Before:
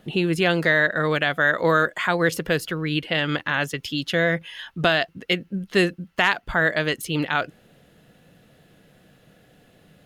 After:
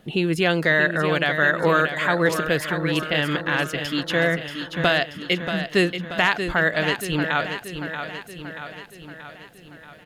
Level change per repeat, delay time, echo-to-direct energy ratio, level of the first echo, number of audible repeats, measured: -5.0 dB, 0.632 s, -7.0 dB, -8.5 dB, 6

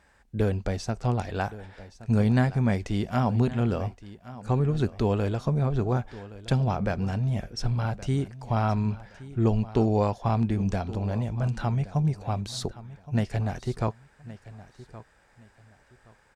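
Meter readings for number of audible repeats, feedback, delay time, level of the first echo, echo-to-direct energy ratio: 2, 25%, 1.12 s, -17.0 dB, -17.0 dB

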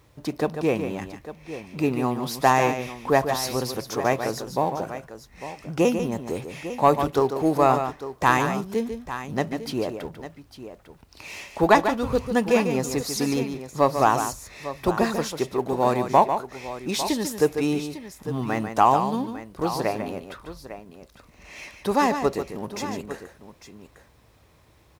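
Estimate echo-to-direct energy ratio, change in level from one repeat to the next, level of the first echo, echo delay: -7.0 dB, no steady repeat, -8.5 dB, 0.145 s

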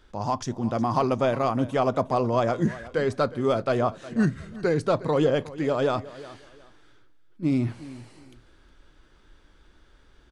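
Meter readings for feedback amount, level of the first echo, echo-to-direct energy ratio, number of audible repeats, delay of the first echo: 24%, -17.5 dB, -17.5 dB, 2, 0.362 s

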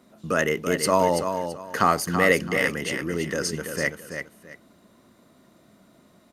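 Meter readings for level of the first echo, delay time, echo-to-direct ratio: -7.5 dB, 0.333 s, -7.0 dB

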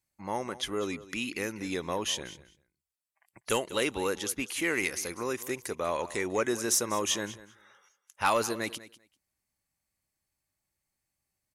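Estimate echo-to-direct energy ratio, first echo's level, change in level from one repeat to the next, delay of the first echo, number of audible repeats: -17.0 dB, -17.0 dB, -16.5 dB, 0.196 s, 2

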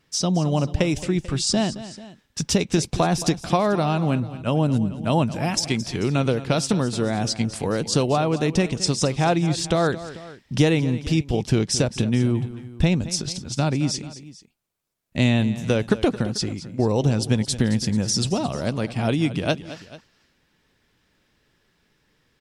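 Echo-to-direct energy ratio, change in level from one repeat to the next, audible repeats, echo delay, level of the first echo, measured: -13.5 dB, -5.0 dB, 2, 0.22 s, -15.0 dB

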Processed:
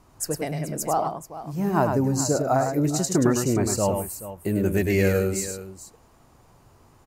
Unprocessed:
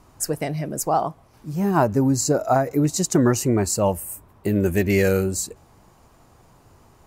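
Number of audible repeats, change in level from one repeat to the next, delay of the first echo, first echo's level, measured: 2, no steady repeat, 0.103 s, -5.5 dB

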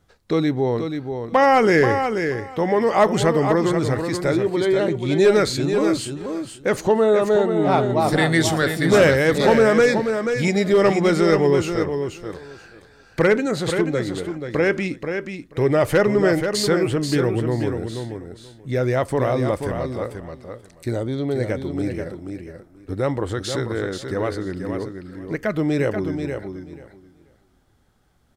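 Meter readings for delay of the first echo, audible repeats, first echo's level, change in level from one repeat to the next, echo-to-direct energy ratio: 0.483 s, 2, -7.0 dB, -16.0 dB, -7.0 dB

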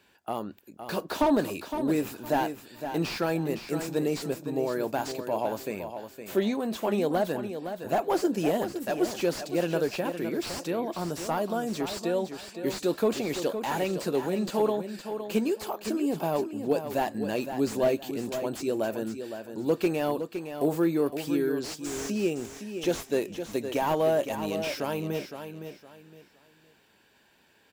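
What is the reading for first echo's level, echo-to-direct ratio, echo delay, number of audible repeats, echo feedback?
-9.0 dB, -8.5 dB, 0.513 s, 3, 27%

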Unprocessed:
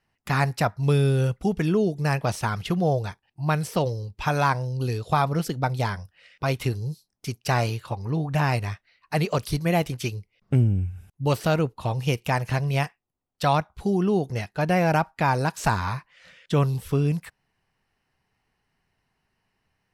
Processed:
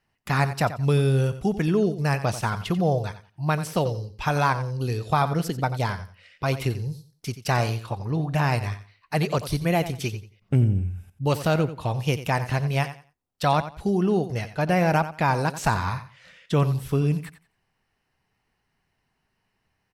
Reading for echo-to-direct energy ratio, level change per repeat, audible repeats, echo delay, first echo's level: -13.0 dB, -13.0 dB, 2, 89 ms, -13.0 dB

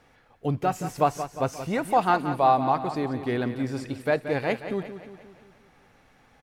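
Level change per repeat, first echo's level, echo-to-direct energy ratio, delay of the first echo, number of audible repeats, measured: -5.5 dB, -11.0 dB, -9.5 dB, 0.177 s, 5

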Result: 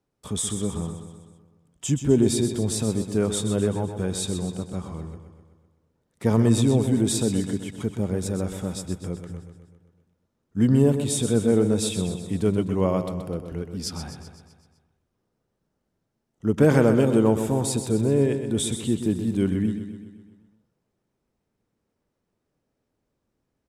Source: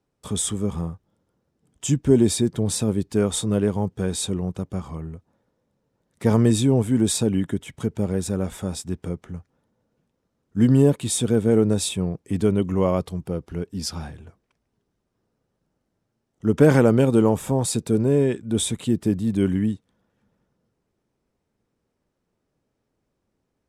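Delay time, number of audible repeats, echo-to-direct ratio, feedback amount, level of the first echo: 0.127 s, 6, -7.5 dB, 56%, -9.0 dB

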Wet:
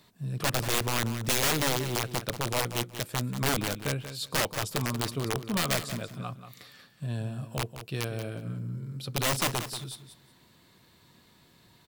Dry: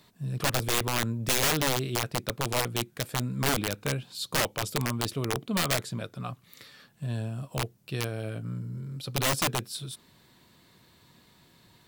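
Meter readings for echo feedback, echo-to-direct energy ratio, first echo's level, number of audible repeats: 20%, -11.0 dB, -11.0 dB, 2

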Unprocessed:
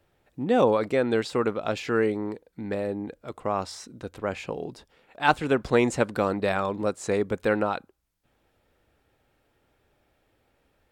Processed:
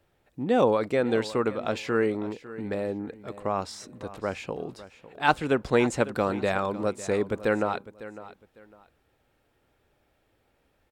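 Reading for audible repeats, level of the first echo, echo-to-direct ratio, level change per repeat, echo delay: 2, -16.0 dB, -16.0 dB, -12.0 dB, 0.553 s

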